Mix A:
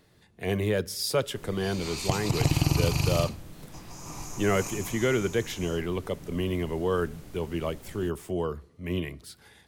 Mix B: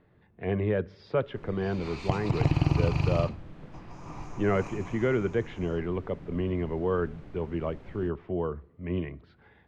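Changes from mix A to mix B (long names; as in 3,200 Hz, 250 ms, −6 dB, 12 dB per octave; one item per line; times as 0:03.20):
speech: add high-frequency loss of the air 280 metres
master: add low-pass filter 2,300 Hz 12 dB per octave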